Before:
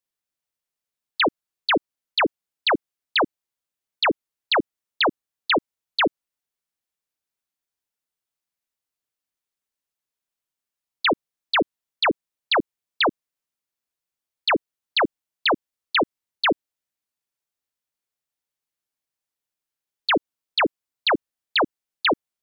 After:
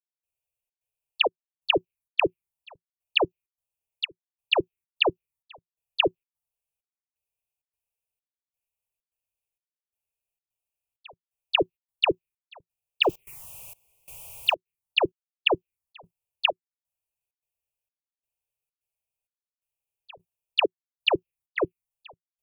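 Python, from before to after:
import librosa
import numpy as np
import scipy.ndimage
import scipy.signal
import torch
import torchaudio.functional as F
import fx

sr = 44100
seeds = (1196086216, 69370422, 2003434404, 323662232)

p1 = fx.zero_step(x, sr, step_db=-33.5, at=(13.03, 14.55))
p2 = fx.curve_eq(p1, sr, hz=(110.0, 170.0, 240.0, 370.0, 580.0, 960.0, 1600.0, 2500.0, 3900.0, 9700.0), db=(0, -5, -27, -2, -6, -8, -24, 5, -19, -6))
p3 = fx.level_steps(p2, sr, step_db=22)
p4 = p2 + (p3 * librosa.db_to_amplitude(2.0))
p5 = fx.step_gate(p4, sr, bpm=130, pattern='..xxxx.xxxx.', floor_db=-24.0, edge_ms=4.5)
p6 = fx.env_phaser(p5, sr, low_hz=280.0, high_hz=2100.0, full_db=-20.0)
y = p6 * librosa.db_to_amplitude(3.5)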